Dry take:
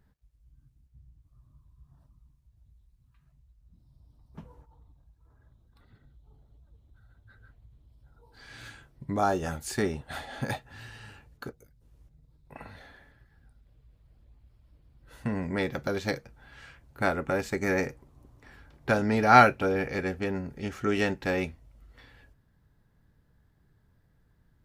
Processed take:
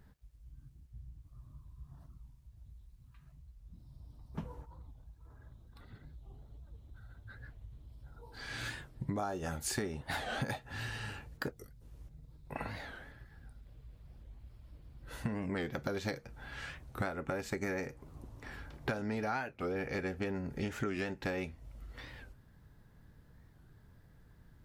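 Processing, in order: compressor 20:1, threshold -38 dBFS, peak gain reduction 28.5 dB; record warp 45 rpm, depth 160 cents; gain +5.5 dB

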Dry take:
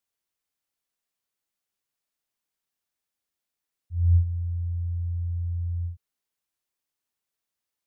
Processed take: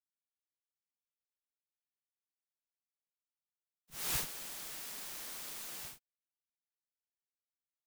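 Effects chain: modulation noise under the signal 34 dB; spectral gate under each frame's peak -30 dB weak; gain +17 dB

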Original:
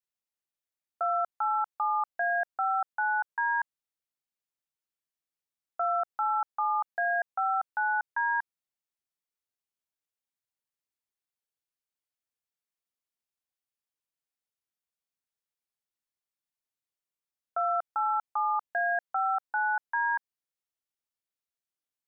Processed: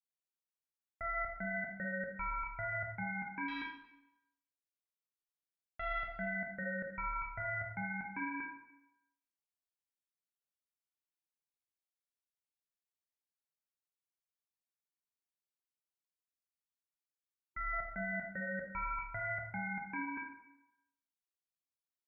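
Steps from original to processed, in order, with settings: 3.48–6.16 self-modulated delay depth 0.064 ms; ring modulator 660 Hz; flange 0.46 Hz, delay 3.5 ms, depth 9.2 ms, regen -65%; 15.98–17.74 spectral gain 350–920 Hz -20 dB; plate-style reverb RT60 0.84 s, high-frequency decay 0.9×, DRR 1.5 dB; gain -4.5 dB

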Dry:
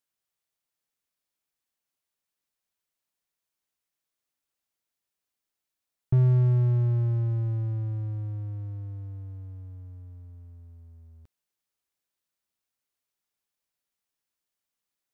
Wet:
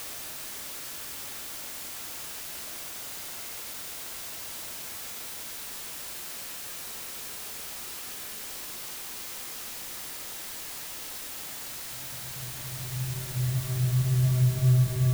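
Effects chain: zero-crossing step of -31.5 dBFS; Paulstretch 8.1×, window 1.00 s, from 4.23

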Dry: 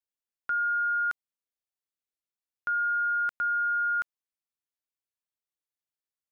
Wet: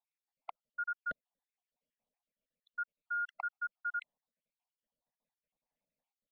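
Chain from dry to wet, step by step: random spectral dropouts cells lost 68%; LPF 1700 Hz 12 dB/oct; fixed phaser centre 360 Hz, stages 6; gain +16 dB

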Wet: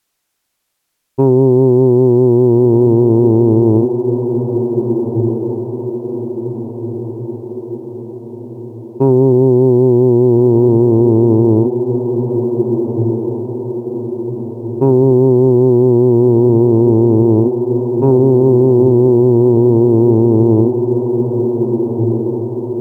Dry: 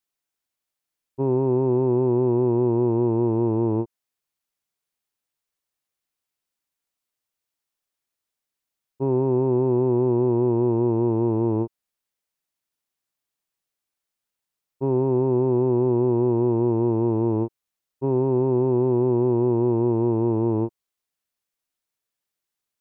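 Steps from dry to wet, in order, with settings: treble ducked by the level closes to 620 Hz, closed at -18 dBFS; 9.32–10.37 LPF 1100 Hz -> 1200 Hz 24 dB/oct; diffused feedback echo 1.682 s, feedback 51%, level -11 dB; maximiser +17 dB; gain -1 dB; IMA ADPCM 176 kbps 44100 Hz

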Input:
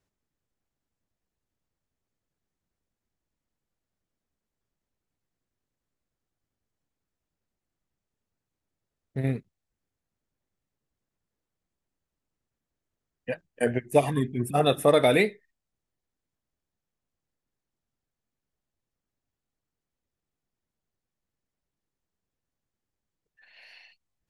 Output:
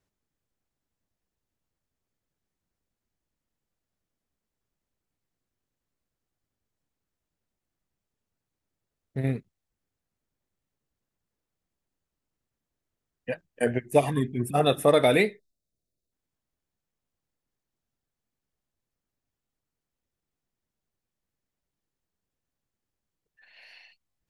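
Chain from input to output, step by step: spectral delete 15.39–16.12, 720–3500 Hz

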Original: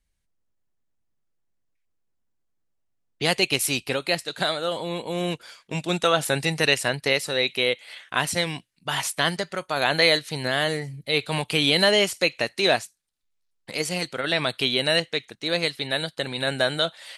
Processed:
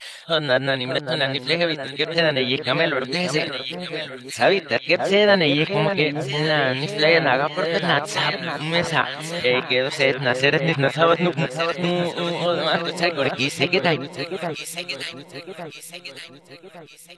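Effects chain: whole clip reversed; echo with dull and thin repeats by turns 0.58 s, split 1500 Hz, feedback 66%, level -7 dB; treble ducked by the level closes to 2400 Hz, closed at -18 dBFS; gain +4.5 dB

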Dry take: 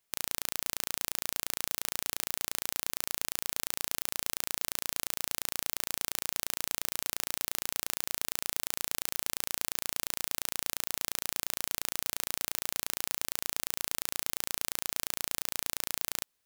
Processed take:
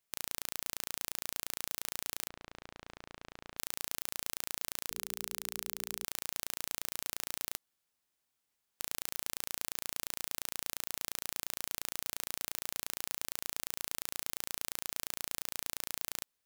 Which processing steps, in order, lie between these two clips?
2.27–3.57 tape spacing loss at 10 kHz 30 dB; 4.86–6.05 notches 50/100/150/200/250/300/350/400/450 Hz; 7.58–8.8 room tone; gain -5 dB

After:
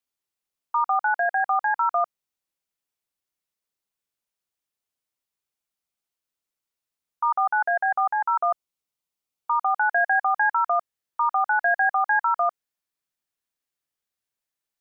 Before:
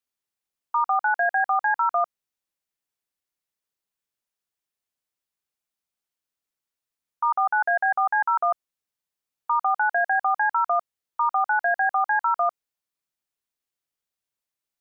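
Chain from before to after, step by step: bell 1700 Hz -2.5 dB 0.23 oct, from 8 s -8.5 dB, from 9.78 s +3 dB

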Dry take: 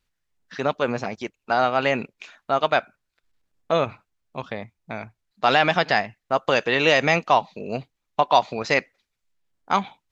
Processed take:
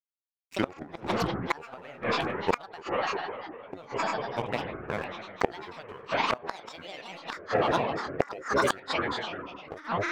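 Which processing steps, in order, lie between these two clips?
HPF 85 Hz 12 dB/oct; crossover distortion -39.5 dBFS; spring tank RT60 2.1 s, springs 50 ms, chirp 30 ms, DRR 2 dB; flipped gate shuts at -11 dBFS, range -26 dB; grains, grains 20/s, spray 19 ms, pitch spread up and down by 12 st; gain +2 dB

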